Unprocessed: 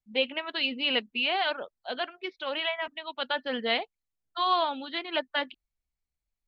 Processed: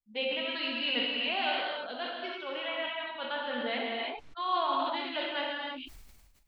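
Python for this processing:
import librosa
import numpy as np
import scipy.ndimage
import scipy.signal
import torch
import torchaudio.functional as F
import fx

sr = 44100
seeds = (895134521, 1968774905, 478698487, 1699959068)

y = fx.lowpass(x, sr, hz=3300.0, slope=12, at=(2.43, 4.76))
y = fx.rev_gated(y, sr, seeds[0], gate_ms=350, shape='flat', drr_db=-2.5)
y = fx.sustainer(y, sr, db_per_s=39.0)
y = F.gain(torch.from_numpy(y), -7.5).numpy()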